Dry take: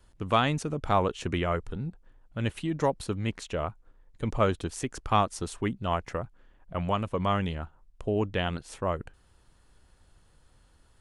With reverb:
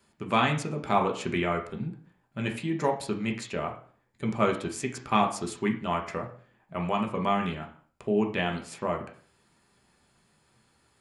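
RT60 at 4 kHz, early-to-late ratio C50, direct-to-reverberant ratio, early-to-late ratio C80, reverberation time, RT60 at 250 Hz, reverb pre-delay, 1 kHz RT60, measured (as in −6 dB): 0.45 s, 10.0 dB, 2.0 dB, 14.5 dB, 0.50 s, 0.50 s, 3 ms, 0.45 s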